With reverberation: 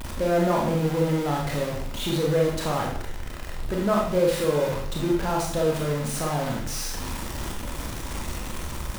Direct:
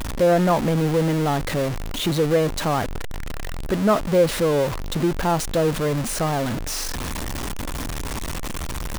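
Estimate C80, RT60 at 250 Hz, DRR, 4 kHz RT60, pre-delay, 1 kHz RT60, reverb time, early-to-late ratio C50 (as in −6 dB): 6.5 dB, 0.75 s, −1.5 dB, 0.55 s, 25 ms, 0.60 s, 0.65 s, 3.0 dB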